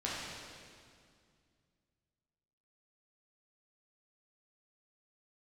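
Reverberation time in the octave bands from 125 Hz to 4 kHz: 3.1, 2.8, 2.2, 2.1, 2.0, 1.9 seconds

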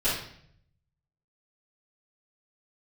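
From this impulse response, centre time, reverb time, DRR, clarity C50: 48 ms, 0.65 s, −14.5 dB, 2.0 dB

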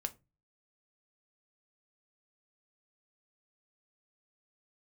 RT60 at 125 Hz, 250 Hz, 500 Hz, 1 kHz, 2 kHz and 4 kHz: 0.50, 0.40, 0.30, 0.20, 0.20, 0.15 seconds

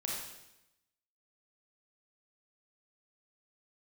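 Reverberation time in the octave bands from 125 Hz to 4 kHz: 1.0, 1.0, 0.90, 0.90, 0.90, 0.90 seconds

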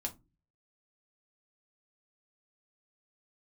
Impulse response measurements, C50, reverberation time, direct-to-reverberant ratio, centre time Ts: 18.5 dB, non-exponential decay, 1.0 dB, 7 ms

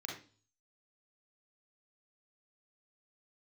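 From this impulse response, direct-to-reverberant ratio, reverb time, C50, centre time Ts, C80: −1.5 dB, 0.40 s, 3.5 dB, 35 ms, 10.0 dB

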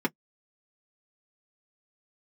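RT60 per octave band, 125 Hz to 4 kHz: 0.10, 0.10, 0.05, 0.05, 0.05, 0.05 seconds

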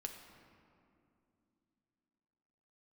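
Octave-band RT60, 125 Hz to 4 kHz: 3.4, 3.9, 2.9, 2.4, 1.9, 1.3 seconds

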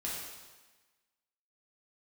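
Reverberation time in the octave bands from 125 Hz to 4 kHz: 1.1, 1.2, 1.2, 1.3, 1.3, 1.2 seconds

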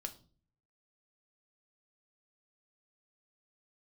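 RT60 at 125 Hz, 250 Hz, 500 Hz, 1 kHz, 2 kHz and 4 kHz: 0.85, 0.65, 0.50, 0.35, 0.30, 0.35 seconds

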